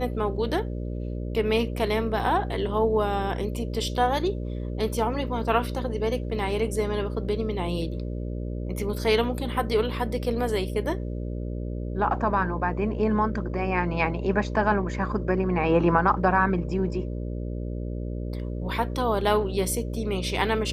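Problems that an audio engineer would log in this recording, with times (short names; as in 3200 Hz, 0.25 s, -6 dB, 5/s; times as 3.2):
buzz 60 Hz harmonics 10 -31 dBFS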